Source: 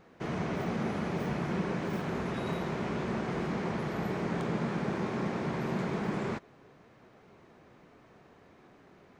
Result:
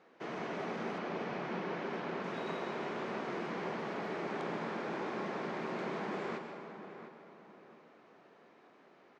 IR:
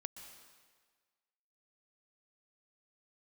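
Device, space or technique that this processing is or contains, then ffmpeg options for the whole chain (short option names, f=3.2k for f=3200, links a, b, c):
supermarket ceiling speaker: -filter_complex "[0:a]highpass=310,lowpass=5.6k[a];[1:a]atrim=start_sample=2205[b];[a][b]afir=irnorm=-1:irlink=0,asettb=1/sr,asplit=3[c][d][e];[c]atrim=end=0.984[f];[d]atrim=start=0.98:end=2.24,asetpts=PTS-STARTPTS,afade=t=in:d=0.004:c=qsin,afade=t=out:st=1.256:d=0.004:c=qsin,lowpass=5.7k[g];[e]atrim=start=2.236[h];[f][g]acrossfade=d=0.004:c1=hsin:c2=qsin[i];[i][h]acrossfade=d=0.004:c1=qsin:c2=hsin,asplit=2[j][k];[k]adelay=703,lowpass=f=2.4k:p=1,volume=-10.5dB,asplit=2[l][m];[m]adelay=703,lowpass=f=2.4k:p=1,volume=0.35,asplit=2[n][o];[o]adelay=703,lowpass=f=2.4k:p=1,volume=0.35,asplit=2[p][q];[q]adelay=703,lowpass=f=2.4k:p=1,volume=0.35[r];[j][l][n][p][r]amix=inputs=5:normalize=0,volume=1dB"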